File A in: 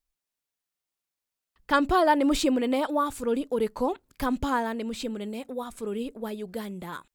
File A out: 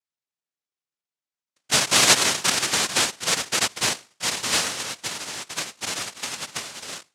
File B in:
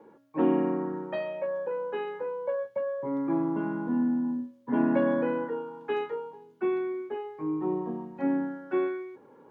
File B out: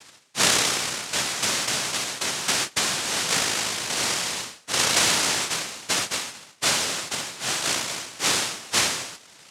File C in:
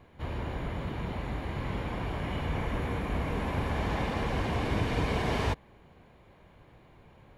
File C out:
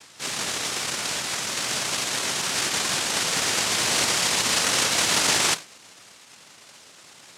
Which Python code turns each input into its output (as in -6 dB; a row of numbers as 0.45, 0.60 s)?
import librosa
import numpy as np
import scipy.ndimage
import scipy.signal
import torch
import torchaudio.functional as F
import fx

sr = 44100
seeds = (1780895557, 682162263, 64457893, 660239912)

y = scipy.signal.sosfilt(scipy.signal.butter(6, 1200.0, 'lowpass', fs=sr, output='sos'), x)
y = fx.low_shelf(y, sr, hz=330.0, db=-9.5)
y = fx.hum_notches(y, sr, base_hz=50, count=7)
y = fx.noise_vocoder(y, sr, seeds[0], bands=1)
y = y * 10.0 ** (-26 / 20.0) / np.sqrt(np.mean(np.square(y)))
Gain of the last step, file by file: +6.5, +8.5, +14.0 dB